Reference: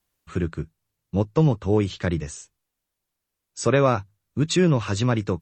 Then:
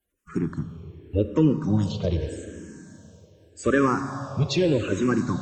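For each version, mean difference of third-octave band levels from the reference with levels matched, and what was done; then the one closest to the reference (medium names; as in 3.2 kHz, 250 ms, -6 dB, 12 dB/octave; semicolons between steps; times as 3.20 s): 7.0 dB: coarse spectral quantiser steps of 30 dB; bass shelf 210 Hz +5.5 dB; Schroeder reverb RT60 3.4 s, combs from 32 ms, DRR 8 dB; barber-pole phaser -0.83 Hz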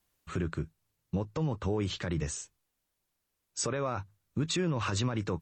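4.5 dB: dynamic bell 1.1 kHz, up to +4 dB, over -35 dBFS, Q 0.84; compression 2:1, threshold -22 dBFS, peak gain reduction 6 dB; peak limiter -22 dBFS, peak gain reduction 13 dB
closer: second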